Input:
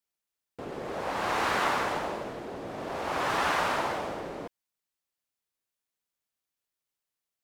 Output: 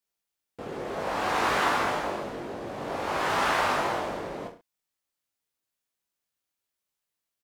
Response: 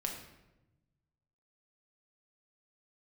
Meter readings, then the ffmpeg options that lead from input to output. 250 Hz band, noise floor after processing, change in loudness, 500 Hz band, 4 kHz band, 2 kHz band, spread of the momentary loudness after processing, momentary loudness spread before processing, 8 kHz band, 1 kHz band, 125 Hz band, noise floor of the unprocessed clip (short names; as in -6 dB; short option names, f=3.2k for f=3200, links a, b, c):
+2.5 dB, under -85 dBFS, +2.5 dB, +2.5 dB, +2.0 dB, +2.0 dB, 13 LU, 13 LU, +2.0 dB, +2.5 dB, +2.0 dB, under -85 dBFS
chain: -af "aecho=1:1:20|43|69.45|99.87|134.8:0.631|0.398|0.251|0.158|0.1"